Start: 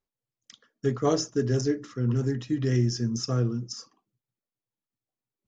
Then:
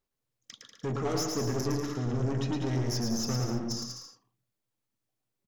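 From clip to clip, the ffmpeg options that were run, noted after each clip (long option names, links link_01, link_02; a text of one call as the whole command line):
ffmpeg -i in.wav -af "alimiter=limit=-21dB:level=0:latency=1:release=19,aeval=exprs='(tanh(39.8*val(0)+0.25)-tanh(0.25))/39.8':channel_layout=same,aecho=1:1:110|192.5|254.4|300.8|335.6:0.631|0.398|0.251|0.158|0.1,volume=3.5dB" out.wav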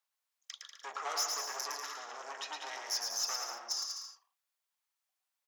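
ffmpeg -i in.wav -af "highpass=frequency=790:width=0.5412,highpass=frequency=790:width=1.3066,volume=1.5dB" out.wav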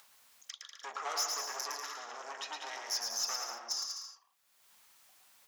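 ffmpeg -i in.wav -af "equalizer=frequency=220:width=5.9:gain=6.5,acompressor=mode=upward:threshold=-43dB:ratio=2.5" out.wav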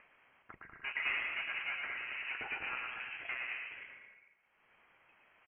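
ffmpeg -i in.wav -af "asoftclip=type=tanh:threshold=-27.5dB,aecho=1:1:221:0.251,lowpass=frequency=2800:width_type=q:width=0.5098,lowpass=frequency=2800:width_type=q:width=0.6013,lowpass=frequency=2800:width_type=q:width=0.9,lowpass=frequency=2800:width_type=q:width=2.563,afreqshift=-3300,volume=4dB" out.wav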